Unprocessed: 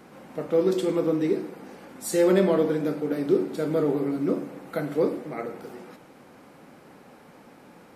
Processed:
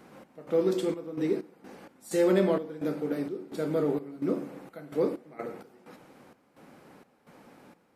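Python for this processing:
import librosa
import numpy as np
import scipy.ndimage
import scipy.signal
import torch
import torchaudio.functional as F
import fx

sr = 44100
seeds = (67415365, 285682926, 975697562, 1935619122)

y = fx.step_gate(x, sr, bpm=64, pattern='x.xx.x.x.xx.xx.x', floor_db=-12.0, edge_ms=4.5)
y = y * librosa.db_to_amplitude(-3.5)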